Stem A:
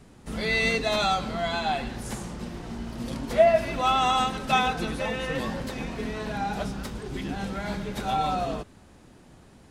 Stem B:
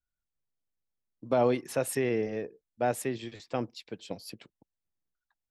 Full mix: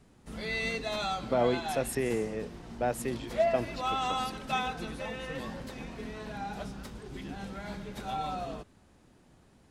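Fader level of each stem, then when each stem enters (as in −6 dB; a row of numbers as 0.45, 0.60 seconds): −8.5, −2.0 decibels; 0.00, 0.00 seconds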